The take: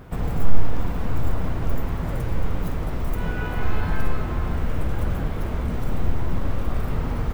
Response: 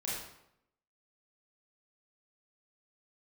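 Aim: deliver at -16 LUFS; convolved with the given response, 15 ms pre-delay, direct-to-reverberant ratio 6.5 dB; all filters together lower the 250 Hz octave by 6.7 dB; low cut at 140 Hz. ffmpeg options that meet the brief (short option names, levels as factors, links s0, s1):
-filter_complex "[0:a]highpass=140,equalizer=f=250:t=o:g=-8.5,asplit=2[s0][s1];[1:a]atrim=start_sample=2205,adelay=15[s2];[s1][s2]afir=irnorm=-1:irlink=0,volume=0.335[s3];[s0][s3]amix=inputs=2:normalize=0,volume=7.5"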